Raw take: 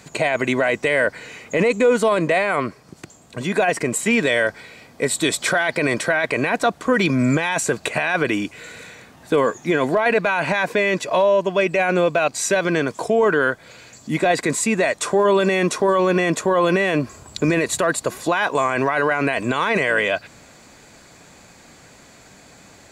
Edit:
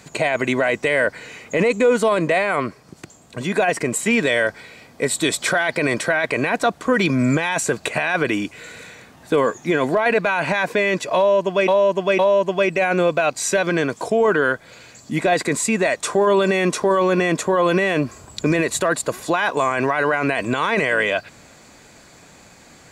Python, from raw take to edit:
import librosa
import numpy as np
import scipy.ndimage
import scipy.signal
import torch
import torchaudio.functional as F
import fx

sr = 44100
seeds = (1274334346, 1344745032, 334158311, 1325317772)

y = fx.edit(x, sr, fx.repeat(start_s=11.17, length_s=0.51, count=3), tone=tone)